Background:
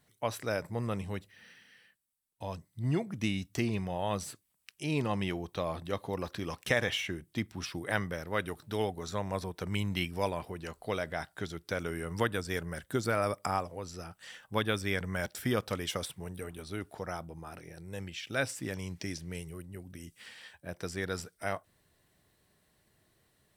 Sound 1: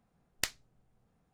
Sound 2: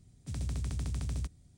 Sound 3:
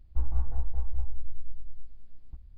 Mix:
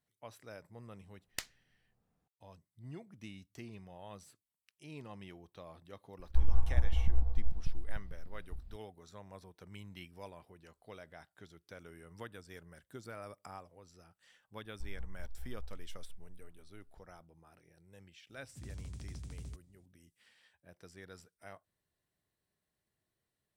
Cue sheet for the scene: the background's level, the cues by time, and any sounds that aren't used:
background -17 dB
0.95 add 1 -7 dB
6.19 add 3 -0.5 dB + regenerating reverse delay 0.148 s, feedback 69%, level -5.5 dB
14.64 add 3 -17.5 dB
18.29 add 2 -11 dB

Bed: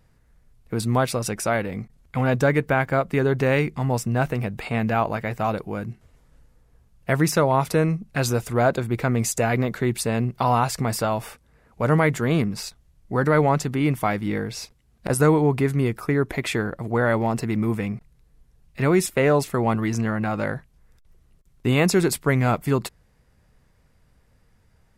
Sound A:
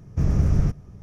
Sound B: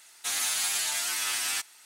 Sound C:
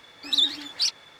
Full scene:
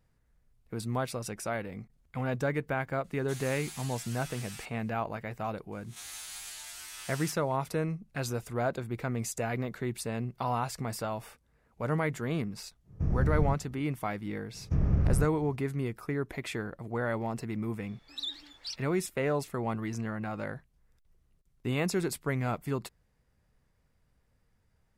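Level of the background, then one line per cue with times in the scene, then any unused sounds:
bed -11 dB
3.04 add B -16.5 dB
5.72 add B -15.5 dB + spectral swells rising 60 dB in 0.30 s
12.83 add A -8 dB, fades 0.10 s + LPF 1400 Hz 6 dB/oct
14.54 add A -6 dB + treble ducked by the level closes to 2700 Hz, closed at -17 dBFS
17.85 add C -15.5 dB

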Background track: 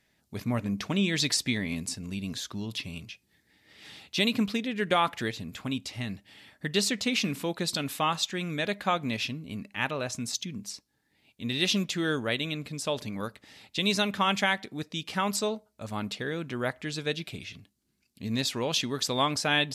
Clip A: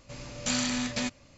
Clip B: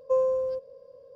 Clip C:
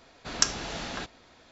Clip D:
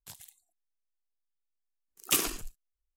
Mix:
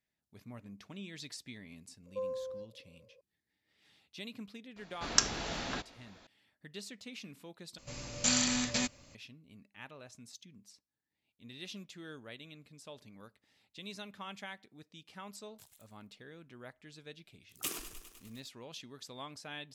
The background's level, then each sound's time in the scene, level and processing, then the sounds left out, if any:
background track -19.5 dB
2.06 add B -14 dB
4.76 add C -2.5 dB
7.78 replace with A -3 dB + high shelf 5900 Hz +9.5 dB
15.52 add D -11.5 dB + lo-fi delay 0.101 s, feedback 80%, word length 8-bit, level -13 dB

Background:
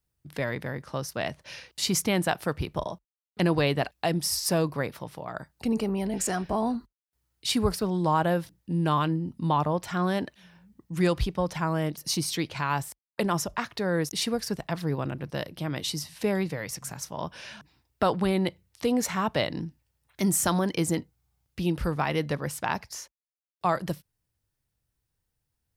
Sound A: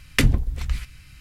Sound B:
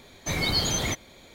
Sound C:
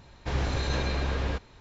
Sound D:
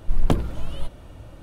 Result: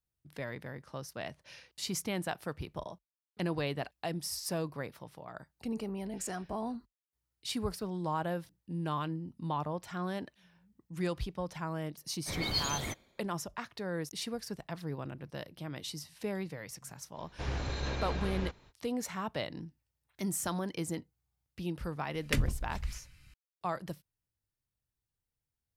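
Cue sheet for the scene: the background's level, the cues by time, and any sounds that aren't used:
background -10 dB
11.99 add B -9.5 dB + three-band expander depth 100%
17.13 add C -7 dB, fades 0.05 s
22.14 add A -12 dB
not used: D

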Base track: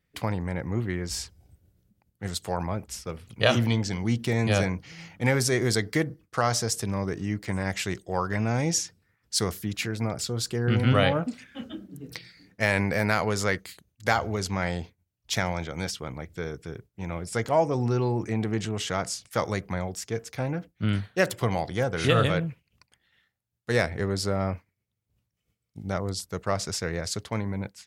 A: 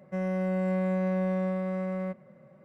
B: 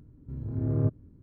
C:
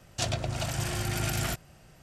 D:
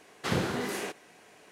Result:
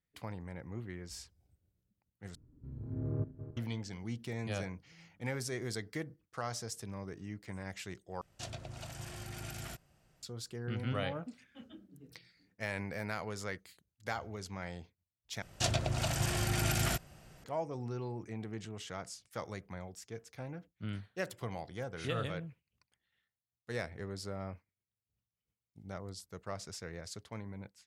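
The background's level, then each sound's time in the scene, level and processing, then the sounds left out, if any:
base track -14.5 dB
2.35 replace with B -9 dB + regenerating reverse delay 0.193 s, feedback 43%, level -11 dB
8.21 replace with C -14 dB
15.42 replace with C -1.5 dB
not used: A, D

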